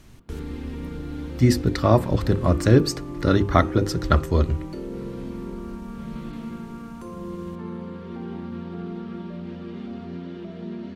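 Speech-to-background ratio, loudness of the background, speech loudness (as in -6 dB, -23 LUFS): 13.5 dB, -34.5 LUFS, -21.0 LUFS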